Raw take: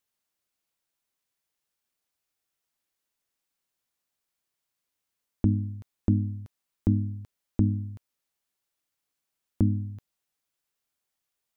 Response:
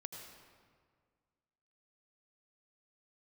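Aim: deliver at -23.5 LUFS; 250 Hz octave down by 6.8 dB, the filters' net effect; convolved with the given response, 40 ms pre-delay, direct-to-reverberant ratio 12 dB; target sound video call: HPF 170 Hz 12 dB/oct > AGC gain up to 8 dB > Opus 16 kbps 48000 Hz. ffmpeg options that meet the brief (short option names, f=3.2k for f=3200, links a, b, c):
-filter_complex "[0:a]equalizer=f=250:t=o:g=-7,asplit=2[a][b];[1:a]atrim=start_sample=2205,adelay=40[c];[b][c]afir=irnorm=-1:irlink=0,volume=-8.5dB[d];[a][d]amix=inputs=2:normalize=0,highpass=170,dynaudnorm=m=8dB,volume=13.5dB" -ar 48000 -c:a libopus -b:a 16k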